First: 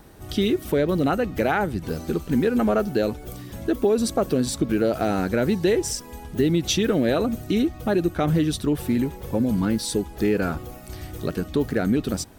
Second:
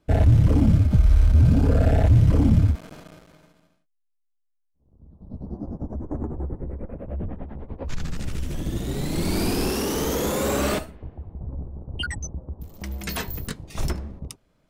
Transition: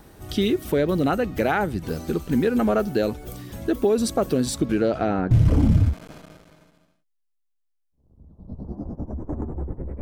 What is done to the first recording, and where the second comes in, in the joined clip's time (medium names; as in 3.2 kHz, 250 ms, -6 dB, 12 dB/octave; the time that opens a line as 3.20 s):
first
4.65–5.31 s: low-pass 12 kHz -> 1.2 kHz
5.31 s: go over to second from 2.13 s